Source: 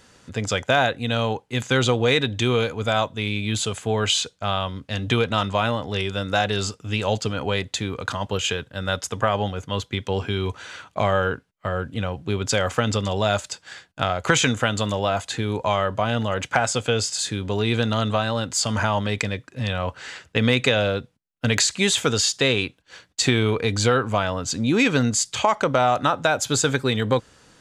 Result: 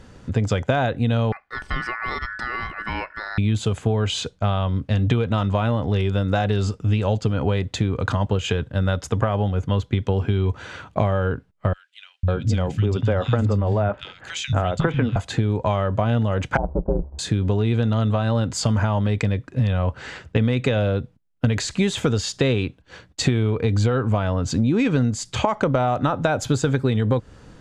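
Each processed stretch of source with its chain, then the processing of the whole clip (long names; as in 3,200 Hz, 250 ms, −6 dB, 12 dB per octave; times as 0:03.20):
0:01.32–0:03.38: high-shelf EQ 3,300 Hz −11.5 dB + downward compressor 2 to 1, threshold −28 dBFS + ring modulation 1,600 Hz
0:11.73–0:15.16: high-shelf EQ 5,500 Hz −10 dB + three-band delay without the direct sound highs, lows, mids 500/550 ms, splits 160/2,400 Hz
0:16.57–0:17.19: gain on one half-wave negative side −3 dB + elliptic low-pass filter 920 Hz, stop band 80 dB + ring modulation 69 Hz
whole clip: spectral tilt −3 dB per octave; downward compressor, threshold −20 dBFS; level +3.5 dB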